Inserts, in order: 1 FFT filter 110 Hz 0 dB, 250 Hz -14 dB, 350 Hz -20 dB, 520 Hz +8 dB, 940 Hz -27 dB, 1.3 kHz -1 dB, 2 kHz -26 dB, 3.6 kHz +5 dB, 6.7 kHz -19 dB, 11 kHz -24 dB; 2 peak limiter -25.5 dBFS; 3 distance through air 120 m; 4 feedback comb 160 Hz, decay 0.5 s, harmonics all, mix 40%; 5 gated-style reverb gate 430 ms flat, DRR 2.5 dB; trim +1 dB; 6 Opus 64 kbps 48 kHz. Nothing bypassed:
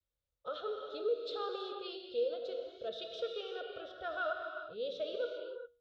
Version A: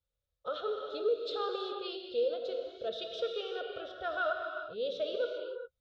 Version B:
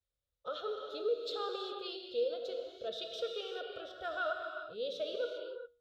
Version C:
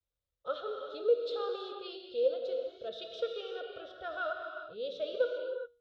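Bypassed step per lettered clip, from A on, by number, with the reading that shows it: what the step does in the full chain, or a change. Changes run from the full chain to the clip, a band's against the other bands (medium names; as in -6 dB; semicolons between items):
4, loudness change +3.5 LU; 3, 4 kHz band +2.5 dB; 2, crest factor change +2.5 dB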